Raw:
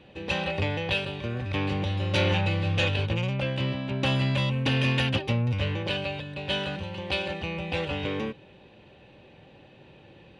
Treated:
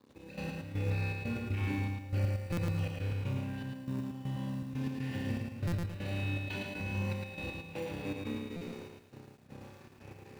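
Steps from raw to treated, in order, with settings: random holes in the spectrogram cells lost 38%; flutter echo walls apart 5.2 m, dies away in 1.3 s; in parallel at -8 dB: sample-rate reducer 1.3 kHz, jitter 0%; on the sum: crossover distortion -49.5 dBFS; high-pass 62 Hz 12 dB/octave; on a send: flutter echo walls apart 7.6 m, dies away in 0.37 s; on the sum: compression 6:1, threshold -35 dBFS, peak gain reduction 25 dB; graphic EQ with 31 bands 100 Hz +6 dB, 250 Hz +10 dB, 630 Hz -3 dB, 3.15 kHz -10 dB; trance gate "x..x..xxx.x.xx" 120 bpm -12 dB; buffer glitch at 2.52/5.67/8.56 s, samples 256, times 8; bit-crushed delay 110 ms, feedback 35%, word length 11-bit, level -3 dB; trim -1.5 dB

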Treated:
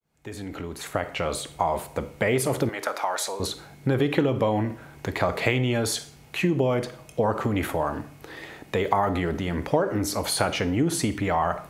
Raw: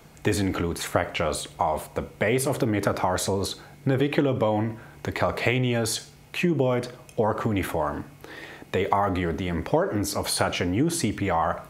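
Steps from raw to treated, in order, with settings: fade-in on the opening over 1.53 s; 2.69–3.40 s: high-pass 690 Hz 12 dB/octave; Schroeder reverb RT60 0.44 s, DRR 16.5 dB

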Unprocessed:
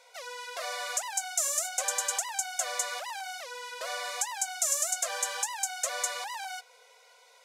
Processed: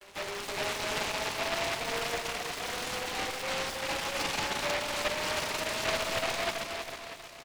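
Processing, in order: vocoder on a note that slides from G3, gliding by +11 st; steep low-pass 4.9 kHz 72 dB/octave; gate with hold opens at -54 dBFS; high-pass 430 Hz 24 dB/octave; treble shelf 2.3 kHz -10.5 dB; in parallel at -2 dB: compressor with a negative ratio -44 dBFS, ratio -1; on the sum: saturation -29.5 dBFS, distortion -19 dB; feedback delay 319 ms, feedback 45%, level -5 dB; on a send at -4.5 dB: reverberation, pre-delay 3 ms; on the sum: delay time shaken by noise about 1.5 kHz, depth 0.25 ms

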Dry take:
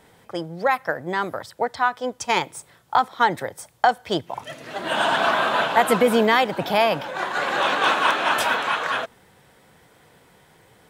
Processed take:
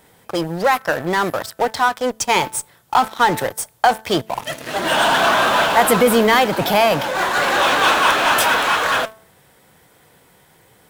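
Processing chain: treble shelf 10 kHz +11.5 dB; de-hum 219.7 Hz, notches 8; in parallel at -9.5 dB: fuzz box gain 33 dB, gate -38 dBFS; on the sum: trim +1 dB

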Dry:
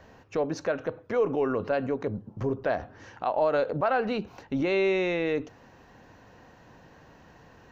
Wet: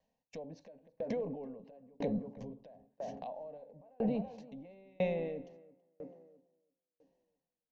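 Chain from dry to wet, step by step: treble shelf 4.9 kHz +4 dB; gate -45 dBFS, range -31 dB; static phaser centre 360 Hz, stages 6; low-pass that closes with the level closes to 1.4 kHz, closed at -27 dBFS; peak limiter -29 dBFS, peak gain reduction 13 dB; de-hum 287.7 Hz, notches 15; tape echo 330 ms, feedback 49%, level -7 dB, low-pass 1.1 kHz; dynamic bell 1.3 kHz, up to -8 dB, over -53 dBFS, Q 1; sawtooth tremolo in dB decaying 1 Hz, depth 35 dB; trim +7.5 dB

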